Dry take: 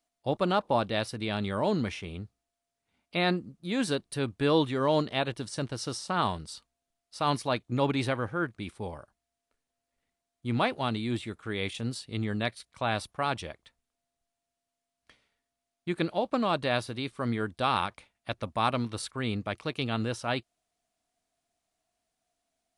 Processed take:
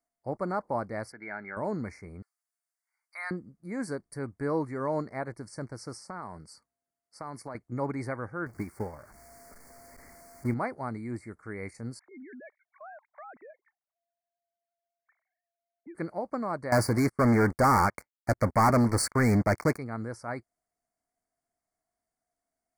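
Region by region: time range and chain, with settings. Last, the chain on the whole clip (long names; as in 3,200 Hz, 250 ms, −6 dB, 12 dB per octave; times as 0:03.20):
0:01.12–0:01.57: loudspeaker in its box 350–3,400 Hz, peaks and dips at 360 Hz +6 dB, 530 Hz −9 dB, 750 Hz −3 dB, 1,200 Hz −4 dB, 1,700 Hz +9 dB, 2,600 Hz +6 dB + comb filter 1.4 ms, depth 50%
0:02.22–0:03.31: high-pass filter 1,000 Hz 24 dB per octave + high-shelf EQ 3,900 Hz +7 dB
0:06.02–0:07.55: high-pass filter 94 Hz + downward compressor 5 to 1, threshold −30 dBFS
0:08.46–0:10.54: converter with a step at zero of −40 dBFS + transient designer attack +10 dB, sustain −7 dB
0:11.99–0:15.95: three sine waves on the formant tracks + downward compressor 3 to 1, threshold −42 dBFS
0:16.72–0:19.78: downward expander −54 dBFS + leveller curve on the samples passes 5
whole clip: Chebyshev band-stop filter 2,200–4,500 Hz, order 4; parametric band 5,600 Hz −5.5 dB 1.1 octaves; level −4 dB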